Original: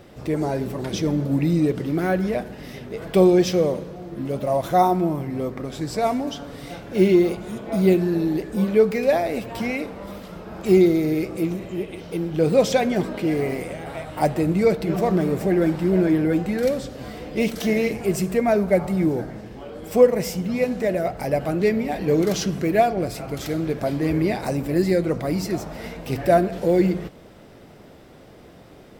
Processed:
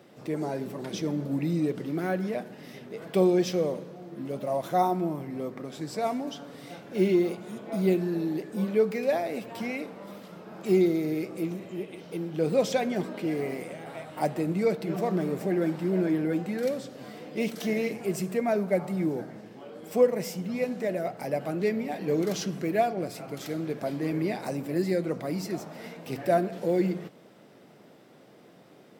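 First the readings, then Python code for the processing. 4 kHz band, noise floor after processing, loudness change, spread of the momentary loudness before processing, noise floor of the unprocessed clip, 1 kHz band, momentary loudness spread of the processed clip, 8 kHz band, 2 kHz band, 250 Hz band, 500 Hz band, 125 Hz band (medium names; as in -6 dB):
-7.0 dB, -54 dBFS, -7.0 dB, 13 LU, -46 dBFS, -7.0 dB, 13 LU, -7.0 dB, -7.0 dB, -7.0 dB, -7.0 dB, -8.5 dB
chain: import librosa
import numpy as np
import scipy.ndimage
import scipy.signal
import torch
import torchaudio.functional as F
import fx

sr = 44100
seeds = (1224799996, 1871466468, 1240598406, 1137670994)

y = scipy.signal.sosfilt(scipy.signal.butter(4, 140.0, 'highpass', fs=sr, output='sos'), x)
y = F.gain(torch.from_numpy(y), -7.0).numpy()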